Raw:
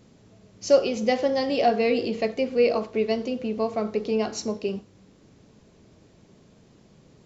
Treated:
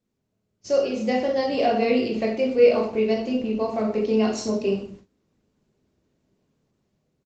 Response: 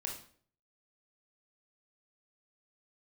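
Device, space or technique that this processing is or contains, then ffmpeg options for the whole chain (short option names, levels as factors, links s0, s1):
speakerphone in a meeting room: -filter_complex "[1:a]atrim=start_sample=2205[s0];[0:a][s0]afir=irnorm=-1:irlink=0,asplit=2[s1][s2];[s2]adelay=120,highpass=300,lowpass=3400,asoftclip=type=hard:threshold=0.158,volume=0.126[s3];[s1][s3]amix=inputs=2:normalize=0,dynaudnorm=f=430:g=5:m=2.51,agate=range=0.126:threshold=0.0112:ratio=16:detection=peak,volume=0.631" -ar 48000 -c:a libopus -b:a 24k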